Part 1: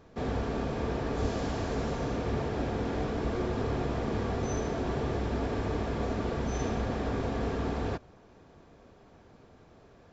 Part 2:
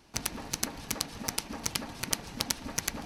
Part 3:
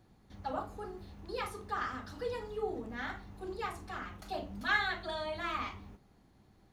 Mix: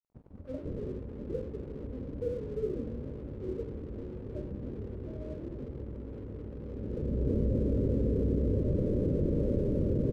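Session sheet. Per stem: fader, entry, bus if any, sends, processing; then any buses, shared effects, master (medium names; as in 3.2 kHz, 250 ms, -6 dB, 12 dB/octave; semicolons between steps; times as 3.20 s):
-3.5 dB, 0.65 s, no send, level flattener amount 100%; auto duck -12 dB, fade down 1.05 s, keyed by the third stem
-12.0 dB, 0.00 s, no send, none
+2.0 dB, 0.00 s, no send, hum notches 50/100/150/200/250/300 Hz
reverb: none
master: Chebyshev low-pass 590 Hz, order 8; crossover distortion -56 dBFS; bass shelf 370 Hz +5 dB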